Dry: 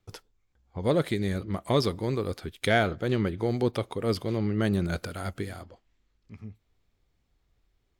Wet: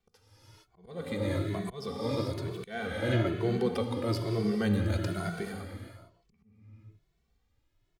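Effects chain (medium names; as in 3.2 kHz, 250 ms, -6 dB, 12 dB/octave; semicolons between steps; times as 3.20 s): gated-style reverb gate 490 ms flat, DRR 3.5 dB; slow attack 479 ms; endless flanger 2.2 ms +1.1 Hz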